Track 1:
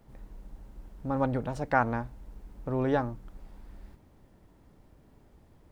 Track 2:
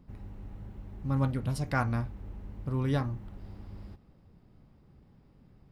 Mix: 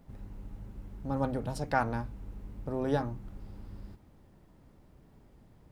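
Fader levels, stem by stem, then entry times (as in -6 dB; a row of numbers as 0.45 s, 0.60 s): -2.0 dB, -4.5 dB; 0.00 s, 0.00 s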